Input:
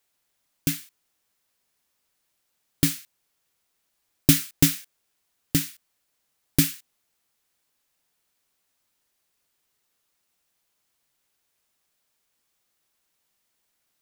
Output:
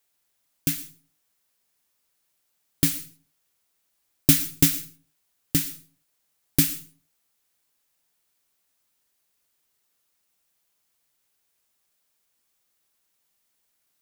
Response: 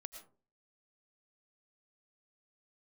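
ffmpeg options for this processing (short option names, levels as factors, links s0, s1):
-filter_complex "[0:a]asplit=2[s0][s1];[1:a]atrim=start_sample=2205,highshelf=f=5400:g=11.5[s2];[s1][s2]afir=irnorm=-1:irlink=0,volume=0.631[s3];[s0][s3]amix=inputs=2:normalize=0,volume=0.631"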